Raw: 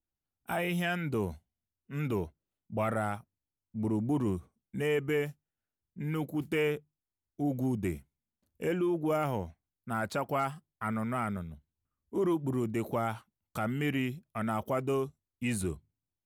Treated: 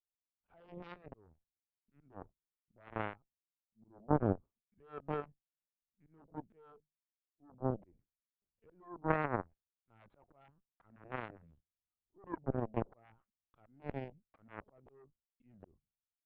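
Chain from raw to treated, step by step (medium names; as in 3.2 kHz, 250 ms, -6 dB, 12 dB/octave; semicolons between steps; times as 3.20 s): low-pass that closes with the level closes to 920 Hz, closed at -30 dBFS; LPC vocoder at 8 kHz pitch kept; slow attack 284 ms; Chebyshev shaper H 3 -9 dB, 4 -33 dB, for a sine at -18 dBFS; trim +5.5 dB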